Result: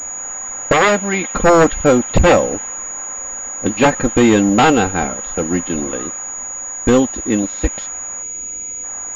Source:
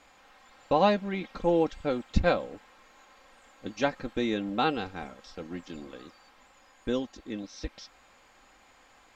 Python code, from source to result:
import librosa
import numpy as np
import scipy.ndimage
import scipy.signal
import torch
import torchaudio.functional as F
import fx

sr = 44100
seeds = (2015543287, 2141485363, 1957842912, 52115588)

y = fx.fold_sine(x, sr, drive_db=12, ceiling_db=-10.0)
y = fx.env_lowpass(y, sr, base_hz=2100.0, full_db=-14.0)
y = fx.low_shelf(y, sr, hz=370.0, db=-11.0, at=(0.72, 1.34))
y = fx.spec_box(y, sr, start_s=8.22, length_s=0.62, low_hz=530.0, high_hz=2100.0, gain_db=-11)
y = fx.pwm(y, sr, carrier_hz=6800.0)
y = y * 10.0 ** (4.5 / 20.0)